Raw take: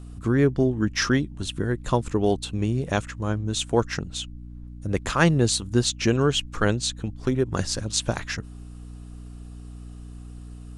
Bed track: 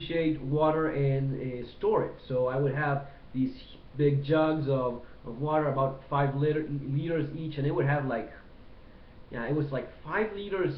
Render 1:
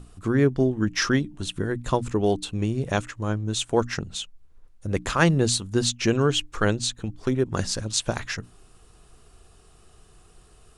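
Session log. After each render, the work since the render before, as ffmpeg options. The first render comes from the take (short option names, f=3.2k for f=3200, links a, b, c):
-af "bandreject=f=60:t=h:w=6,bandreject=f=120:t=h:w=6,bandreject=f=180:t=h:w=6,bandreject=f=240:t=h:w=6,bandreject=f=300:t=h:w=6"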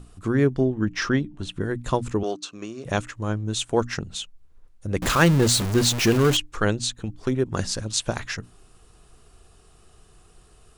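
-filter_complex "[0:a]asettb=1/sr,asplit=3[a][b][c];[a]atrim=end=0.604[d];[b]atrim=start=0.6:end=1.61,asetpts=PTS-STARTPTS,afade=t=in:d=0.004:c=qsin,afade=t=out:st=1.006:d=0.004:c=qsin,aemphasis=mode=reproduction:type=50kf[e];[c]atrim=start=1.606[f];[d][e]acrossfade=d=0.004:c1=hsin:c2=qsin[g];[g][f]acrossfade=d=0.004:c1=qsin:c2=hsin,asettb=1/sr,asplit=3[h][i][j];[h]atrim=end=2.234[k];[i]atrim=start=2.23:end=2.85,asetpts=PTS-STARTPTS,afade=t=in:d=0.004:c=qsin,afade=t=out:st=0.616:d=0.004:c=qsin,highpass=390,equalizer=f=460:t=q:w=4:g=-6,equalizer=f=840:t=q:w=4:g=-9,equalizer=f=1.2k:t=q:w=4:g=9,equalizer=f=2k:t=q:w=4:g=-5,equalizer=f=3.3k:t=q:w=4:g=-5,equalizer=f=6k:t=q:w=4:g=6,lowpass=f=7.3k:w=0.5412,lowpass=f=7.3k:w=1.3066[l];[j]atrim=start=2.846[m];[k][l]acrossfade=d=0.004:c1=hsin:c2=qsin[n];[n][m]acrossfade=d=0.004:c1=qsin:c2=hsin,asettb=1/sr,asplit=3[o][p][q];[o]atrim=end=5.024[r];[p]atrim=start=5.02:end=6.37,asetpts=PTS-STARTPTS,afade=t=in:d=0.004:c=qsin,afade=t=out:st=1.346:d=0.004:c=qsin,aeval=exprs='val(0)+0.5*0.0841*sgn(val(0))':c=same[s];[q]atrim=start=6.366[t];[r][s]acrossfade=d=0.004:c1=hsin:c2=qsin[u];[u][t]acrossfade=d=0.004:c1=qsin:c2=hsin"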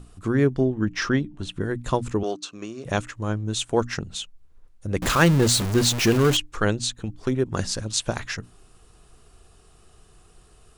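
-af anull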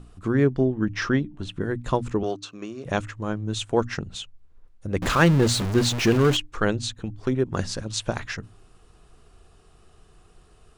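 -af "highshelf=f=6.1k:g=-10,bandreject=f=52.12:t=h:w=4,bandreject=f=104.24:t=h:w=4"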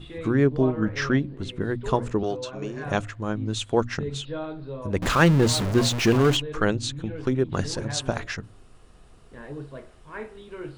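-filter_complex "[1:a]volume=-8dB[a];[0:a][a]amix=inputs=2:normalize=0"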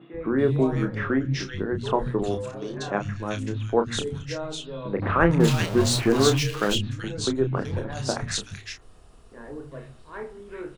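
-filter_complex "[0:a]asplit=2[a][b];[b]adelay=30,volume=-7dB[c];[a][c]amix=inputs=2:normalize=0,acrossover=split=180|2100[d][e][f];[d]adelay=140[g];[f]adelay=380[h];[g][e][h]amix=inputs=3:normalize=0"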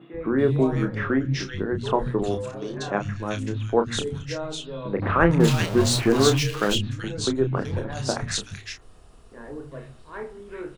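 -af "volume=1dB"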